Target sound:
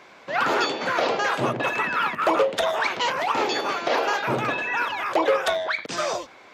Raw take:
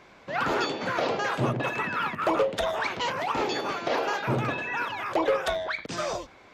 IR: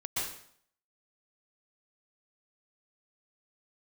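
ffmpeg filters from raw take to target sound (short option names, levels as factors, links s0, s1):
-af "highpass=f=380:p=1,volume=1.88"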